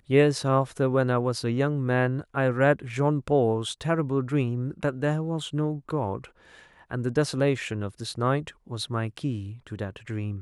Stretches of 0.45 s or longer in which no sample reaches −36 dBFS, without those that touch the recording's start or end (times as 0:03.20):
0:06.25–0:06.91